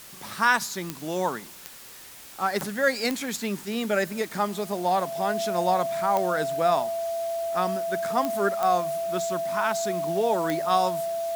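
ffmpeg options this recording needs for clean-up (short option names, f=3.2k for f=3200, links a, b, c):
-af "adeclick=t=4,bandreject=f=670:w=30,afwtdn=0.0056"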